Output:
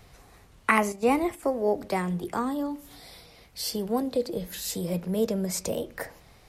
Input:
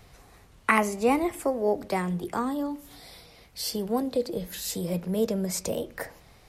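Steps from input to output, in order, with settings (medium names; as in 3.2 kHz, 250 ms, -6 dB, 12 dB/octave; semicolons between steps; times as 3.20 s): 0.92–1.43 s: gate -32 dBFS, range -9 dB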